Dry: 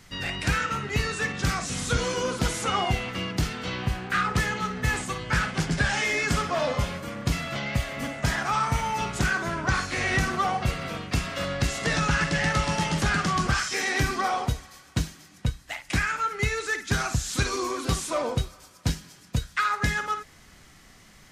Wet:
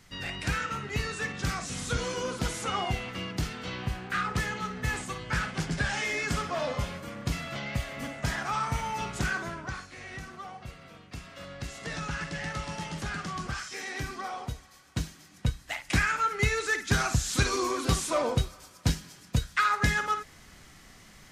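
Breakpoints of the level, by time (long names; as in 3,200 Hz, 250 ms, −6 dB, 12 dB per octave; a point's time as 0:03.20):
0:09.39 −5 dB
0:09.92 −17 dB
0:10.94 −17 dB
0:11.99 −10.5 dB
0:14.35 −10.5 dB
0:15.62 0 dB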